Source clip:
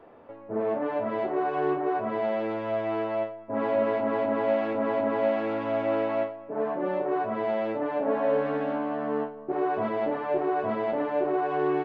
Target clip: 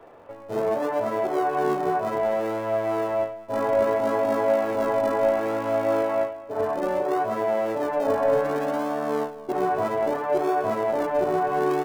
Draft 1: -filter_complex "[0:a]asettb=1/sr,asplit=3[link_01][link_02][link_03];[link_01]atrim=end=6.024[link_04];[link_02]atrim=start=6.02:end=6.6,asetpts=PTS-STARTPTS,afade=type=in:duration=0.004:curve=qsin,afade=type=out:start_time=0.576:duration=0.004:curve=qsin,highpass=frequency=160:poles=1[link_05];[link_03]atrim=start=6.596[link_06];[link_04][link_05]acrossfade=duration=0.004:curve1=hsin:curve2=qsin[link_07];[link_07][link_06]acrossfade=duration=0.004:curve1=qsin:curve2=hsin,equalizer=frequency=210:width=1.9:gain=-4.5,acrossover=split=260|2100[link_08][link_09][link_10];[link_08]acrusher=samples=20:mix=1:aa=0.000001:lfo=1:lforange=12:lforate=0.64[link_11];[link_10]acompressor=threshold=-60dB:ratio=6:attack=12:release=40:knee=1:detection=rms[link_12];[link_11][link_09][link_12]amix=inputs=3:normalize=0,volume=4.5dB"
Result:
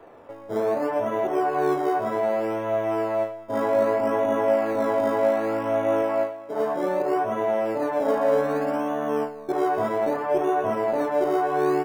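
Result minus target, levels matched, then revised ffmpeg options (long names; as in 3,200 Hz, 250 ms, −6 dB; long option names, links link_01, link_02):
sample-and-hold swept by an LFO: distortion −16 dB
-filter_complex "[0:a]asettb=1/sr,asplit=3[link_01][link_02][link_03];[link_01]atrim=end=6.024[link_04];[link_02]atrim=start=6.02:end=6.6,asetpts=PTS-STARTPTS,afade=type=in:duration=0.004:curve=qsin,afade=type=out:start_time=0.576:duration=0.004:curve=qsin,highpass=frequency=160:poles=1[link_05];[link_03]atrim=start=6.596[link_06];[link_04][link_05]acrossfade=duration=0.004:curve1=hsin:curve2=qsin[link_07];[link_07][link_06]acrossfade=duration=0.004:curve1=qsin:curve2=hsin,equalizer=frequency=210:width=1.9:gain=-4.5,acrossover=split=260|2100[link_08][link_09][link_10];[link_08]acrusher=samples=63:mix=1:aa=0.000001:lfo=1:lforange=37.8:lforate=0.64[link_11];[link_10]acompressor=threshold=-60dB:ratio=6:attack=12:release=40:knee=1:detection=rms[link_12];[link_11][link_09][link_12]amix=inputs=3:normalize=0,volume=4.5dB"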